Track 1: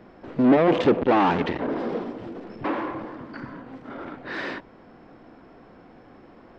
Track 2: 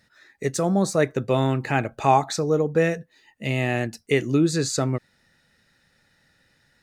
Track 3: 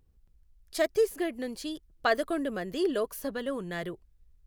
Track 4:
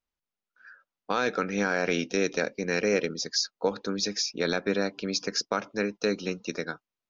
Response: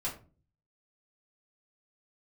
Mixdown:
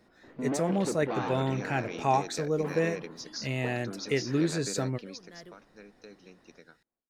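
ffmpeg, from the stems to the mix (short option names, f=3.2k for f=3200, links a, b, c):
-filter_complex "[0:a]volume=-15dB,asplit=2[a][b];[b]volume=-23dB[c];[1:a]bandreject=f=1.2k:w=12,volume=-7.5dB[d];[2:a]adelay=1600,volume=-13dB[e];[3:a]acompressor=threshold=-23dB:ratio=6,volume=-10.5dB,afade=t=out:st=4.96:d=0.35:silence=0.281838,asplit=2[f][g];[g]apad=whole_len=267390[h];[e][h]sidechaincompress=threshold=-44dB:ratio=8:attack=16:release=426[i];[c]aecho=0:1:208|416|624|832|1040|1248:1|0.42|0.176|0.0741|0.0311|0.0131[j];[a][d][i][f][j]amix=inputs=5:normalize=0"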